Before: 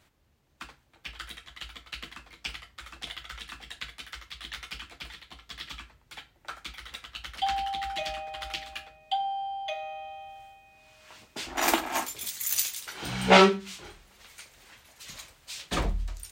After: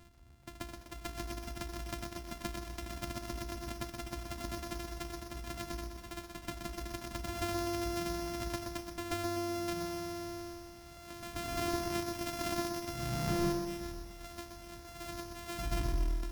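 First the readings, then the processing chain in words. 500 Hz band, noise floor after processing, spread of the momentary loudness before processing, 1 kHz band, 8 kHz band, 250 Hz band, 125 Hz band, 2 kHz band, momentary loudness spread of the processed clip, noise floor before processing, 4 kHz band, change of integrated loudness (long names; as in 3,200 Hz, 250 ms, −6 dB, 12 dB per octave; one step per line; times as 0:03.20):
−7.5 dB, −52 dBFS, 20 LU, −11.0 dB, −8.5 dB, −2.5 dB, −1.0 dB, −11.5 dB, 12 LU, −65 dBFS, −10.5 dB, −9.5 dB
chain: samples sorted by size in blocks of 128 samples
gain into a clipping stage and back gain 20.5 dB
low-shelf EQ 210 Hz +9 dB
backwards echo 135 ms −9.5 dB
downward compressor 2 to 1, threshold −44 dBFS, peak gain reduction 14 dB
parametric band 480 Hz −6.5 dB 0.82 octaves
feedback echo at a low word length 125 ms, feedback 55%, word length 10 bits, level −6 dB
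level +4 dB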